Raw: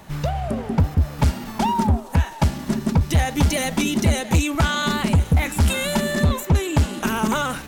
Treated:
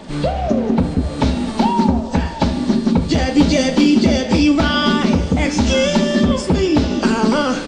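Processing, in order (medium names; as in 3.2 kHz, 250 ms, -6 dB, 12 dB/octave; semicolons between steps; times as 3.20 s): knee-point frequency compression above 2.6 kHz 1.5:1; graphic EQ 125/250/500/4000 Hz -4/+11/+8/+8 dB; in parallel at +1 dB: compression 12:1, threshold -19 dBFS, peak gain reduction 13 dB; on the sum: hard clipper -2.5 dBFS, distortion -22 dB; feedback delay 75 ms, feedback 57%, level -15.5 dB; on a send at -7.5 dB: reverberation RT60 0.40 s, pre-delay 3 ms; on the sum: trim -4 dB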